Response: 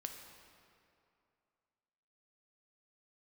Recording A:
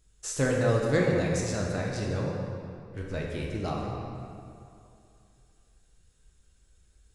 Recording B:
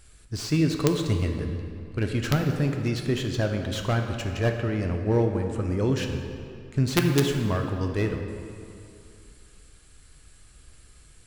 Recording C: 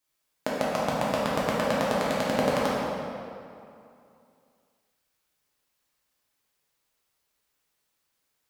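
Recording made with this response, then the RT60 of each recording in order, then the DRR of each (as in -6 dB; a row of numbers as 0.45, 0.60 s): B; 2.6, 2.6, 2.6 s; -2.5, 3.5, -7.0 dB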